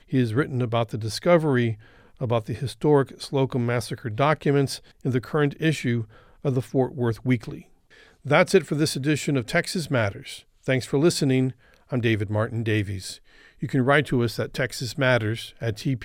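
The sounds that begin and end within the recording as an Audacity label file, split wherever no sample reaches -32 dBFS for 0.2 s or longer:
2.210000	4.770000	sound
5.050000	6.030000	sound
6.450000	7.590000	sound
8.260000	10.380000	sound
10.680000	11.510000	sound
11.920000	13.150000	sound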